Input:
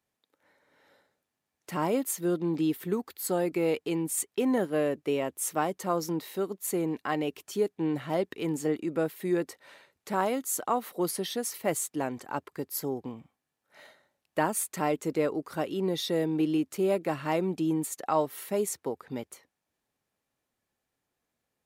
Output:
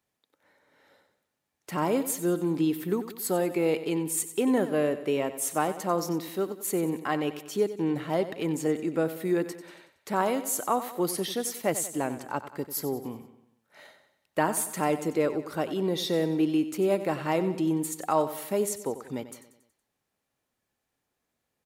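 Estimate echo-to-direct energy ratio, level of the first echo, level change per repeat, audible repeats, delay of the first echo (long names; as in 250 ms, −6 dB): −11.5 dB, −13.0 dB, −6.0 dB, 4, 93 ms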